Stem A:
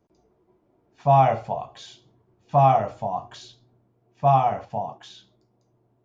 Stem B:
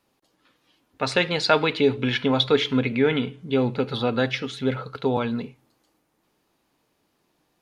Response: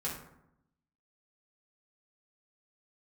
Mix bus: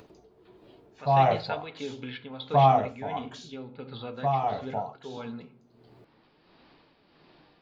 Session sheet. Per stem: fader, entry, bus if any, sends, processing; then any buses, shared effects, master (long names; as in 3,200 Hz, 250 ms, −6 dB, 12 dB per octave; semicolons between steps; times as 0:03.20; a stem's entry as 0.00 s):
−2.5 dB, 0.00 s, no send, parametric band 440 Hz +7 dB 0.34 octaves
−1.5 dB, 0.00 s, send −22.5 dB, Butterworth low-pass 4,900 Hz 72 dB per octave; hum removal 45.13 Hz, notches 30; flanger 0.59 Hz, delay 2.2 ms, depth 9.2 ms, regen +73%; automatic ducking −8 dB, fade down 0.25 s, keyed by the first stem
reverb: on, RT60 0.80 s, pre-delay 3 ms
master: upward compression, threshold −41 dBFS; amplitude tremolo 1.5 Hz, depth 53%